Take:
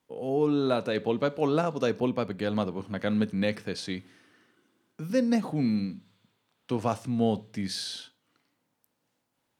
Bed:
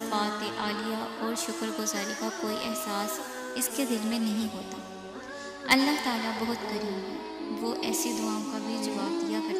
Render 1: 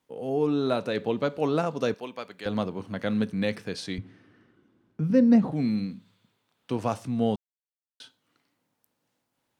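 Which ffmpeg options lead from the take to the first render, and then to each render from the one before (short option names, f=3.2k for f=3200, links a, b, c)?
-filter_complex "[0:a]asettb=1/sr,asplit=3[a][b][c];[a]atrim=end=1.944[d];[b]atrim=start=1.94:end=2.46,asetpts=PTS-STARTPTS,afade=t=in:d=0.004:c=qsin,afade=t=out:st=0.516:d=0.004:c=qsin,highpass=f=1.3k:p=1[e];[c]atrim=start=2.456[f];[d][e]acrossfade=d=0.004:c1=hsin:c2=qsin[g];[g][f]acrossfade=d=0.004:c1=qsin:c2=hsin,asettb=1/sr,asplit=3[h][i][j];[h]atrim=end=3.984[k];[i]atrim=start=3.98:end=5.52,asetpts=PTS-STARTPTS,afade=t=in:d=0.004:c=qsin,afade=t=out:st=1.536:d=0.004:c=qsin,aemphasis=mode=reproduction:type=riaa[l];[j]atrim=start=5.516[m];[k][l]acrossfade=d=0.004:c1=hsin:c2=qsin[n];[n][m]acrossfade=d=0.004:c1=qsin:c2=hsin,asplit=3[o][p][q];[o]atrim=end=7.36,asetpts=PTS-STARTPTS,afade=t=out:st=7.356:d=0.004:c=hsin[r];[p]atrim=start=7.36:end=8,asetpts=PTS-STARTPTS,volume=0[s];[q]atrim=start=8,asetpts=PTS-STARTPTS,afade=t=in:d=0.004:c=hsin[t];[r][s][t]concat=n=3:v=0:a=1"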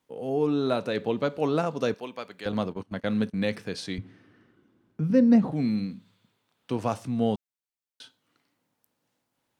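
-filter_complex "[0:a]asettb=1/sr,asplit=3[a][b][c];[a]atrim=end=2.524[d];[b]atrim=start=2.52:end=3.44,asetpts=PTS-STARTPTS,afade=t=in:d=0.004:c=qsin,afade=t=out:st=0.916:d=0.004:c=qsin,agate=range=-19dB:threshold=-37dB:ratio=16:release=100:detection=peak[e];[c]atrim=start=3.436[f];[d][e]acrossfade=d=0.004:c1=hsin:c2=qsin[g];[g][f]acrossfade=d=0.004:c1=qsin:c2=hsin"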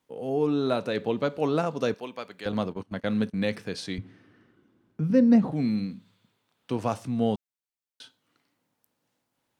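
-af anull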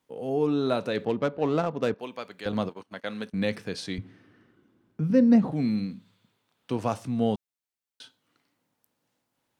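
-filter_complex "[0:a]asplit=3[a][b][c];[a]afade=t=out:st=1.04:d=0.02[d];[b]adynamicsmooth=sensitivity=4:basefreq=1.5k,afade=t=in:st=1.04:d=0.02,afade=t=out:st=1.99:d=0.02[e];[c]afade=t=in:st=1.99:d=0.02[f];[d][e][f]amix=inputs=3:normalize=0,asettb=1/sr,asplit=3[g][h][i];[g]atrim=end=2.694[j];[h]atrim=start=2.69:end=3.32,asetpts=PTS-STARTPTS,afade=t=in:d=0.004:c=qsin,afade=t=out:st=0.626:d=0.004:c=qsin,highpass=f=710:p=1[k];[i]atrim=start=3.316[l];[j][k]acrossfade=d=0.004:c1=hsin:c2=qsin[m];[m][l]acrossfade=d=0.004:c1=qsin:c2=hsin"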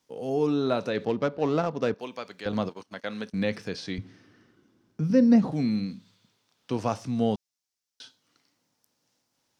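-filter_complex "[0:a]acrossover=split=3200[a][b];[b]acompressor=threshold=-54dB:ratio=4:attack=1:release=60[c];[a][c]amix=inputs=2:normalize=0,equalizer=f=5.5k:w=1.5:g=12"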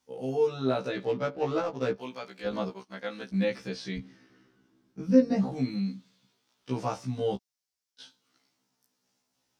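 -af "afftfilt=real='re*1.73*eq(mod(b,3),0)':imag='im*1.73*eq(mod(b,3),0)':win_size=2048:overlap=0.75"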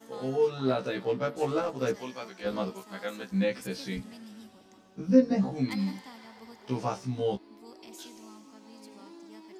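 -filter_complex "[1:a]volume=-18.5dB[a];[0:a][a]amix=inputs=2:normalize=0"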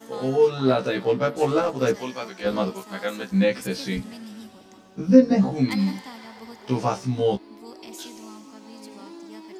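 -af "volume=7.5dB,alimiter=limit=-2dB:level=0:latency=1"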